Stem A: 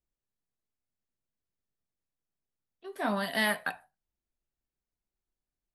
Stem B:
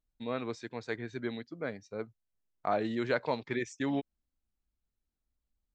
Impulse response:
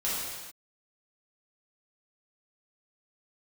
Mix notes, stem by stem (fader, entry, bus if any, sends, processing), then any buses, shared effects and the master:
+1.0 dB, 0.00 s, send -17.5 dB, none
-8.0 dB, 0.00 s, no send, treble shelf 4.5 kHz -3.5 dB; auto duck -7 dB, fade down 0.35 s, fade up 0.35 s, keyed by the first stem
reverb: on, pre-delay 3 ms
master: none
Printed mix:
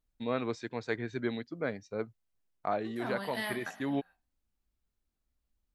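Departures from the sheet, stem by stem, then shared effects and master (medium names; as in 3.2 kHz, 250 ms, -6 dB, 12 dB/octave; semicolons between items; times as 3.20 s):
stem A +1.0 dB -> -9.5 dB; stem B -8.0 dB -> +3.0 dB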